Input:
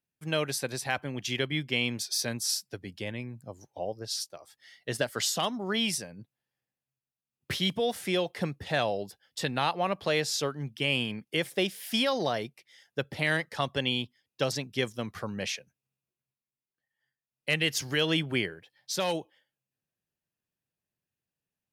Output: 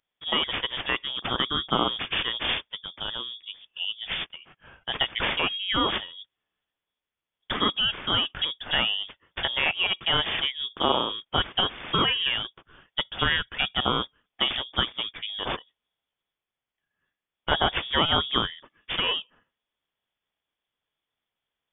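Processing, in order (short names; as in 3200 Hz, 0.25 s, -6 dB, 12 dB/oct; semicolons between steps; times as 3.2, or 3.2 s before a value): careless resampling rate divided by 8×, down none, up zero stuff; 2.6–3.22 air absorption 84 m; 4.36–5 HPF 150 Hz; inverted band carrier 3500 Hz; 15.08–15.5 dynamic EQ 2000 Hz, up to -4 dB, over -43 dBFS, Q 1.1; gain +2.5 dB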